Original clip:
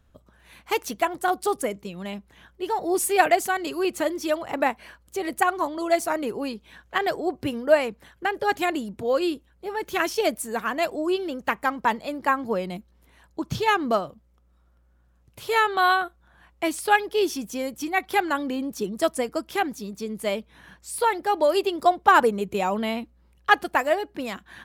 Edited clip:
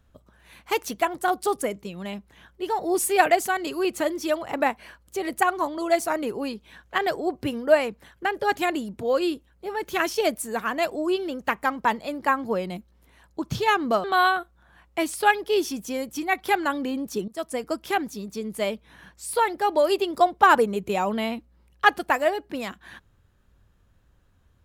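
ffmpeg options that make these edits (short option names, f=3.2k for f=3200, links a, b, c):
-filter_complex "[0:a]asplit=3[a][b][c];[a]atrim=end=14.042[d];[b]atrim=start=15.688:end=18.93,asetpts=PTS-STARTPTS,afade=t=out:st=3.238:d=0.004:c=hsin:silence=0.11885[e];[c]atrim=start=18.93,asetpts=PTS-STARTPTS,afade=t=in:d=0.42:silence=0.11885[f];[e][f]concat=n=2:v=0:a=1[g];[d][g]acrossfade=d=0.004:c1=hsin:c2=hsin"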